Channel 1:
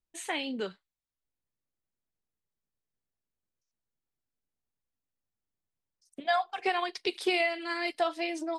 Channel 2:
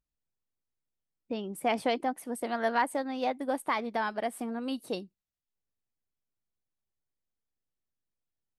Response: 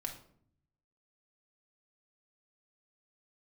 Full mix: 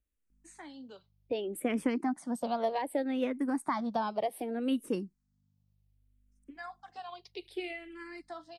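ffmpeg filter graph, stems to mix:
-filter_complex "[0:a]lowshelf=f=190:t=q:w=3:g=-13.5,aeval=exprs='val(0)+0.00224*(sin(2*PI*50*n/s)+sin(2*PI*2*50*n/s)/2+sin(2*PI*3*50*n/s)/3+sin(2*PI*4*50*n/s)/4+sin(2*PI*5*50*n/s)/5)':c=same,adelay=300,volume=0.224[s0];[1:a]lowshelf=f=490:g=5.5,volume=1.19,asplit=2[s1][s2];[s2]apad=whole_len=391803[s3];[s0][s3]sidechaincompress=threshold=0.00447:ratio=8:attack=16:release=297[s4];[s4][s1]amix=inputs=2:normalize=0,acrossover=split=360[s5][s6];[s6]acompressor=threshold=0.0447:ratio=6[s7];[s5][s7]amix=inputs=2:normalize=0,asplit=2[s8][s9];[s9]afreqshift=-0.65[s10];[s8][s10]amix=inputs=2:normalize=1"

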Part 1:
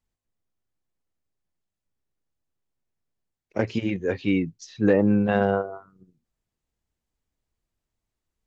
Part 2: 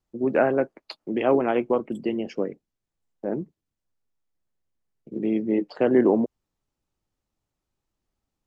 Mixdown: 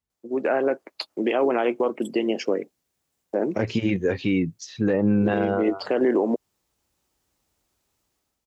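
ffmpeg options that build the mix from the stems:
-filter_complex "[0:a]highpass=50,volume=0.596[s0];[1:a]highpass=300,highshelf=f=4600:g=8,adelay=100,volume=0.794[s1];[s0][s1]amix=inputs=2:normalize=0,dynaudnorm=f=200:g=5:m=3.35,alimiter=limit=0.237:level=0:latency=1:release=103"

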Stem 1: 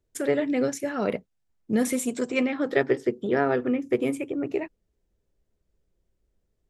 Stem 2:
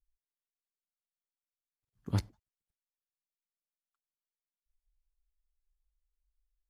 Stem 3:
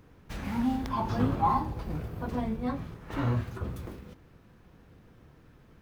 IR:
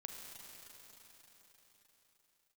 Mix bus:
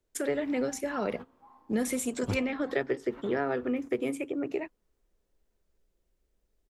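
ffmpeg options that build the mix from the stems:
-filter_complex "[0:a]lowshelf=f=270:g=-3.5,volume=1.06,asplit=2[s0][s1];[1:a]adelay=150,volume=1.41[s2];[2:a]bass=f=250:g=-11,treble=f=4000:g=-7,volume=0.316,asplit=2[s3][s4];[s4]volume=0.1[s5];[s1]apad=whole_len=256616[s6];[s3][s6]sidechaingate=range=0.0316:threshold=0.02:ratio=16:detection=peak[s7];[3:a]atrim=start_sample=2205[s8];[s5][s8]afir=irnorm=-1:irlink=0[s9];[s0][s2][s7][s9]amix=inputs=4:normalize=0,equalizer=f=110:t=o:w=1.3:g=-6.5,acrossover=split=190[s10][s11];[s11]acompressor=threshold=0.0282:ratio=2[s12];[s10][s12]amix=inputs=2:normalize=0"

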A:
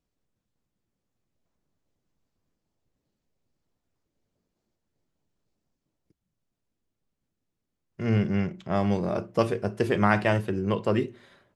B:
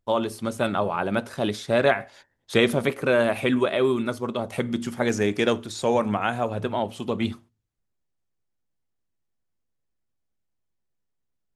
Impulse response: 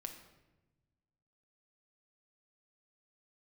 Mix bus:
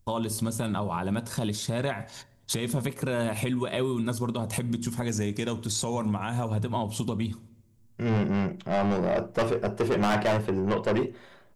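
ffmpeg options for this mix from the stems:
-filter_complex "[0:a]adynamicequalizer=threshold=0.0158:dfrequency=740:dqfactor=0.78:tfrequency=740:tqfactor=0.78:attack=5:release=100:ratio=0.375:range=3.5:mode=boostabove:tftype=bell,asoftclip=type=tanh:threshold=0.075,volume=1.26[s0];[1:a]bass=f=250:g=14,treble=f=4000:g=13,acompressor=threshold=0.0501:ratio=10,equalizer=f=960:w=7.1:g=8.5,volume=1.12,asplit=2[s1][s2];[s2]volume=0.211[s3];[2:a]atrim=start_sample=2205[s4];[s3][s4]afir=irnorm=-1:irlink=0[s5];[s0][s1][s5]amix=inputs=3:normalize=0,alimiter=limit=0.126:level=0:latency=1:release=136"

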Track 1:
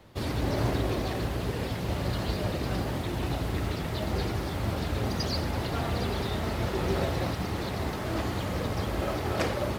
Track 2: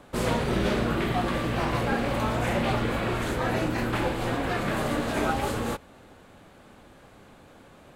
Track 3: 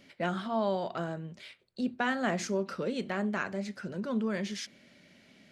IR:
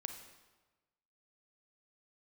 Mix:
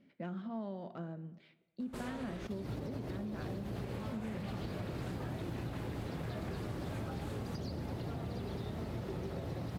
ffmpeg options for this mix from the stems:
-filter_complex "[0:a]equalizer=f=130:t=o:w=1.1:g=6,acrossover=split=130|620[s0][s1][s2];[s0]acompressor=threshold=0.01:ratio=4[s3];[s1]acompressor=threshold=0.0224:ratio=4[s4];[s2]acompressor=threshold=0.00447:ratio=4[s5];[s3][s4][s5]amix=inputs=3:normalize=0,adelay=2350,volume=1.06[s6];[1:a]acompressor=threshold=0.0355:ratio=6,adelay=1800,volume=0.376,asplit=3[s7][s8][s9];[s7]atrim=end=2.47,asetpts=PTS-STARTPTS,afade=t=out:st=2.466:d=0.004:c=hsin[s10];[s8]atrim=start=2.47:end=3.76,asetpts=PTS-STARTPTS,volume=0[s11];[s9]atrim=start=3.76,asetpts=PTS-STARTPTS,afade=t=in:d=0.004:c=hsin[s12];[s10][s11][s12]concat=n=3:v=0:a=1[s13];[2:a]equalizer=f=210:t=o:w=2:g=12,adynamicsmooth=sensitivity=3:basefreq=3600,volume=0.141,asplit=3[s14][s15][s16];[s15]volume=0.531[s17];[s16]apad=whole_len=535353[s18];[s6][s18]sidechaincompress=threshold=0.00794:ratio=8:attack=8.6:release=127[s19];[3:a]atrim=start_sample=2205[s20];[s17][s20]afir=irnorm=-1:irlink=0[s21];[s19][s13][s14][s21]amix=inputs=4:normalize=0,acompressor=threshold=0.0141:ratio=6"

